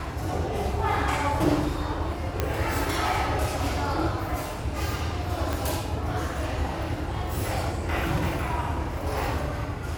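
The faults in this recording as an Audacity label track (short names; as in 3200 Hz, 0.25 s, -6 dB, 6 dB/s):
2.400000	2.400000	pop -10 dBFS
5.530000	5.530000	pop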